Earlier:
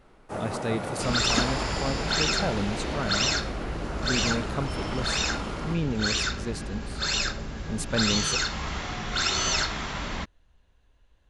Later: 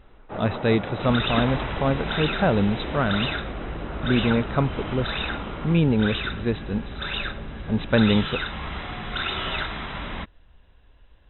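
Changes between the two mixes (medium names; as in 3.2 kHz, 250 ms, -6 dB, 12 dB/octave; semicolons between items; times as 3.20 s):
speech +8.5 dB; master: add brick-wall FIR low-pass 4 kHz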